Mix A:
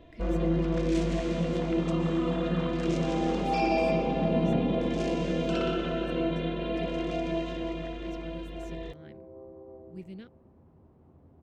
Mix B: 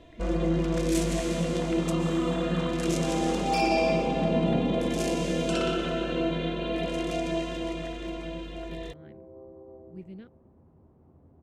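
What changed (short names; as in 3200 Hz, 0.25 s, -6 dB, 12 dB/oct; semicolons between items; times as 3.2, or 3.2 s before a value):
first sound: remove tape spacing loss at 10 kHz 33 dB; master: add high shelf 3100 Hz -12 dB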